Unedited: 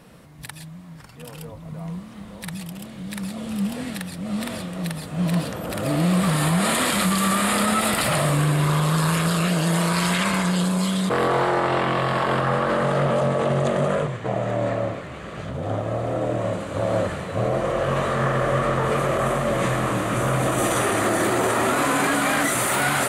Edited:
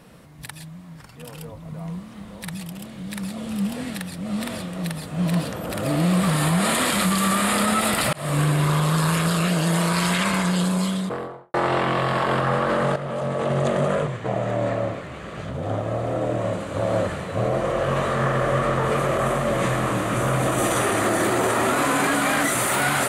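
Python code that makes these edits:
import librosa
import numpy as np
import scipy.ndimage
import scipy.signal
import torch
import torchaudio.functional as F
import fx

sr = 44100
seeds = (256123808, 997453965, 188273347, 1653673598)

y = fx.studio_fade_out(x, sr, start_s=10.73, length_s=0.81)
y = fx.edit(y, sr, fx.fade_in_span(start_s=8.13, length_s=0.26),
    fx.fade_in_from(start_s=12.96, length_s=0.68, floor_db=-12.0), tone=tone)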